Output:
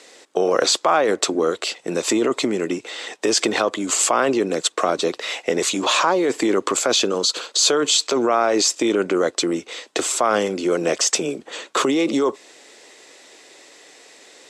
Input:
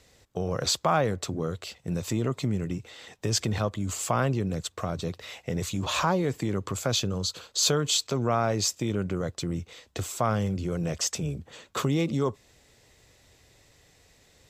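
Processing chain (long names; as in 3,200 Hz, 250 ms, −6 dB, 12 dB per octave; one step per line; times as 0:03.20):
Chebyshev band-pass filter 310–9,700 Hz, order 3
in parallel at +0.5 dB: compressor whose output falls as the input rises −32 dBFS, ratio −0.5
on the sum: level +7 dB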